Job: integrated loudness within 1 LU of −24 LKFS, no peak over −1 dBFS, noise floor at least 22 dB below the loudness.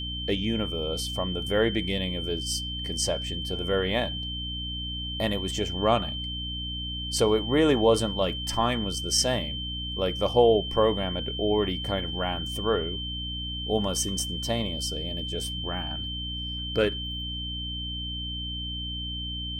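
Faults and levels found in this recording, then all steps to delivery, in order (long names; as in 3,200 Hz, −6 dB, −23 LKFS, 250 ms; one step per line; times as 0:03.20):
mains hum 60 Hz; hum harmonics up to 300 Hz; level of the hum −34 dBFS; interfering tone 3,100 Hz; level of the tone −33 dBFS; integrated loudness −27.5 LKFS; sample peak −7.5 dBFS; target loudness −24.0 LKFS
→ hum removal 60 Hz, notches 5
notch filter 3,100 Hz, Q 30
level +3.5 dB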